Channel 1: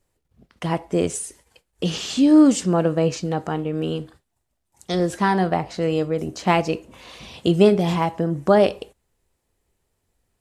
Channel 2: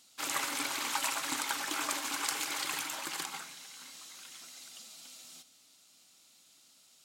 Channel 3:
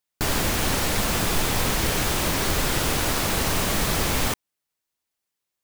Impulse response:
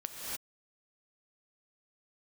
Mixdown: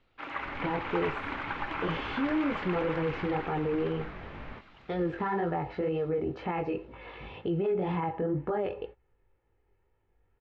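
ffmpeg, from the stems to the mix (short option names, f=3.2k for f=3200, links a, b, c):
-filter_complex "[0:a]aecho=1:1:2.3:0.51,acompressor=threshold=-21dB:ratio=6,volume=1.5dB[a];[1:a]volume=0dB,asplit=2[b][c];[c]volume=-3dB[d];[2:a]adelay=250,volume=-15.5dB,asplit=2[e][f];[f]volume=-20dB[g];[a][e]amix=inputs=2:normalize=0,flanger=delay=17.5:depth=4.7:speed=2,alimiter=limit=-22.5dB:level=0:latency=1:release=17,volume=0dB[h];[d][g]amix=inputs=2:normalize=0,aecho=0:1:668:1[i];[b][h][i]amix=inputs=3:normalize=0,lowpass=f=2.4k:w=0.5412,lowpass=f=2.4k:w=1.3066"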